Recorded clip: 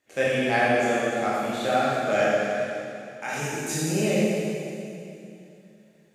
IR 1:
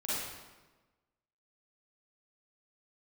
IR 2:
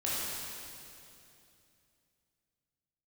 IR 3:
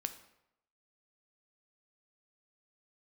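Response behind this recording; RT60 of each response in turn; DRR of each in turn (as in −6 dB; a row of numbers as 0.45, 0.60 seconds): 2; 1.2, 2.7, 0.85 seconds; −10.0, −8.5, 8.5 decibels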